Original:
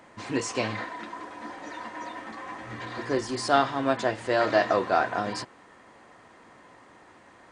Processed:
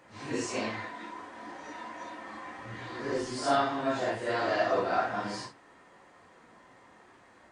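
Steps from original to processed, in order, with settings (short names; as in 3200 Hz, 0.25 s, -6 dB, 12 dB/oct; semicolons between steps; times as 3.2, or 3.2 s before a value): phase scrambler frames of 0.2 s; gain -4 dB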